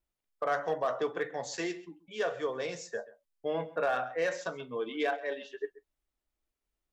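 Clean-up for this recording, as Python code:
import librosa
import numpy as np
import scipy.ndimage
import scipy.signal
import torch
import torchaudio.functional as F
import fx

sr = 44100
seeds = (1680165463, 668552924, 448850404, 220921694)

y = fx.fix_declip(x, sr, threshold_db=-22.0)
y = fx.fix_echo_inverse(y, sr, delay_ms=133, level_db=-19.0)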